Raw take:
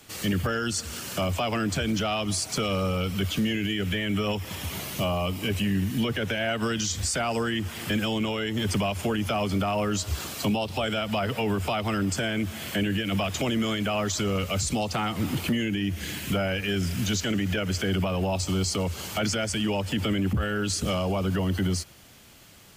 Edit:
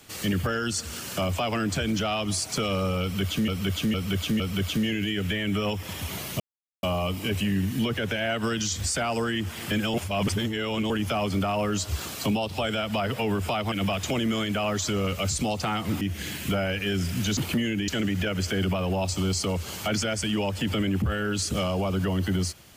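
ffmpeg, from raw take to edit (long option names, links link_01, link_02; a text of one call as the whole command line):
ffmpeg -i in.wav -filter_complex "[0:a]asplit=11[link_01][link_02][link_03][link_04][link_05][link_06][link_07][link_08][link_09][link_10][link_11];[link_01]atrim=end=3.482[link_12];[link_02]atrim=start=3.018:end=3.482[link_13];[link_03]atrim=start=3.018:end=3.482[link_14];[link_04]atrim=start=3.018:end=5.02,asetpts=PTS-STARTPTS,afade=type=out:start_time=1.998:duration=0.004:curve=hsin,apad=pad_dur=0.43[link_15];[link_05]atrim=start=5.02:end=8.132,asetpts=PTS-STARTPTS,afade=type=in:duration=0.004:curve=hsin[link_16];[link_06]atrim=start=8.128:end=9.092,asetpts=PTS-STARTPTS,areverse[link_17];[link_07]atrim=start=9.088:end=11.912[link_18];[link_08]atrim=start=13.028:end=15.322[link_19];[link_09]atrim=start=15.828:end=17.192[link_20];[link_10]atrim=start=15.318:end=15.832[link_21];[link_11]atrim=start=17.188[link_22];[link_12][link_13]acrossfade=duration=0.004:curve1=hsin:curve2=hsin[link_23];[link_23][link_14]acrossfade=duration=0.004:curve1=hsin:curve2=hsin[link_24];[link_15][link_16]concat=n=2:v=0:a=1[link_25];[link_24][link_25]acrossfade=duration=0.004:curve1=hsin:curve2=hsin[link_26];[link_26][link_17]acrossfade=duration=0.004:curve1=hsin:curve2=hsin[link_27];[link_27][link_18]acrossfade=duration=0.004:curve1=hsin:curve2=hsin[link_28];[link_28][link_19]acrossfade=duration=0.004:curve1=hsin:curve2=hsin[link_29];[link_29][link_20]acrossfade=duration=0.004:curve1=hsin:curve2=hsin[link_30];[link_30][link_21]acrossfade=duration=0.004:curve1=hsin:curve2=hsin[link_31];[link_31][link_22]acrossfade=duration=0.004:curve1=hsin:curve2=hsin" out.wav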